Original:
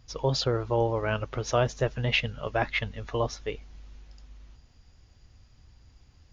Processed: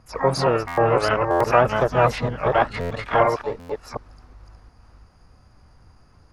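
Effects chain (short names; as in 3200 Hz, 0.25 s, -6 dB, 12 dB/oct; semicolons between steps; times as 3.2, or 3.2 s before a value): reverse delay 0.361 s, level -1.5 dB; EQ curve 120 Hz 0 dB, 1300 Hz +11 dB, 2900 Hz -16 dB, 4900 Hz +1 dB, 7100 Hz -12 dB; harmoniser +5 st -10 dB, +12 st -10 dB; stuck buffer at 0.67/1.3/2.8/3.59, samples 512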